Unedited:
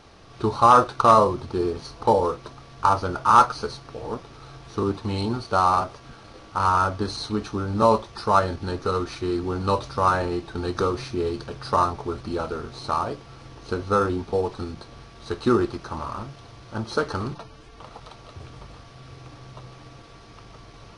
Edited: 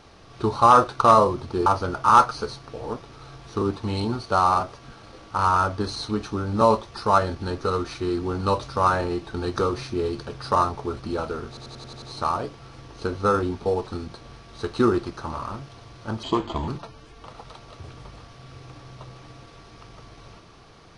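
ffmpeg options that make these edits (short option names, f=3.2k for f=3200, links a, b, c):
-filter_complex "[0:a]asplit=10[a][b][c][d][e][f][g][h][i][j];[a]atrim=end=1.662[k];[b]atrim=start=2.868:end=12.782[l];[c]atrim=start=12.688:end=12.782[m];[d]atrim=start=12.688:end=12.782[n];[e]atrim=start=12.688:end=12.782[o];[f]atrim=start=12.688:end=12.782[p];[g]atrim=start=12.688:end=12.782[q];[h]atrim=start=12.688:end=16.904[r];[i]atrim=start=16.9:end=17.24,asetpts=PTS-STARTPTS,asetrate=33516,aresample=44100[s];[j]atrim=start=17.236[t];[k][l]acrossfade=d=0.004:c1=hsin:c2=hsin[u];[u][m]acrossfade=d=0.004:c1=hsin:c2=hsin[v];[v][n]acrossfade=d=0.004:c1=hsin:c2=hsin[w];[w][o]acrossfade=d=0.004:c1=hsin:c2=hsin[x];[x][p]acrossfade=d=0.004:c1=hsin:c2=hsin[y];[y][q]acrossfade=d=0.004:c1=hsin:c2=hsin[z];[z][r]acrossfade=d=0.004:c1=hsin:c2=hsin[aa];[aa][s]acrossfade=d=0.004:c1=hsin:c2=hsin[ab];[ab][t]acrossfade=d=0.004:c1=hsin:c2=hsin"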